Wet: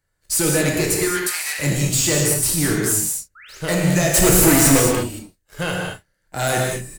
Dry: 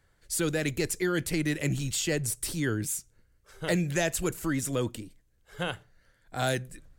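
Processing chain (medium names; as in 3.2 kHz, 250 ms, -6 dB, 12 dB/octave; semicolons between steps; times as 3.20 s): treble shelf 5 kHz +8 dB; waveshaping leveller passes 3; 1.05–1.59 s: high-pass 950 Hz 24 dB/octave; 3.35–3.58 s: painted sound rise 1.2–7.8 kHz -41 dBFS; 4.14–4.80 s: waveshaping leveller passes 5; peaking EQ 3.4 kHz -5.5 dB 0.21 oct; doubling 33 ms -12 dB; gated-style reverb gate 250 ms flat, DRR -1 dB; trim -3.5 dB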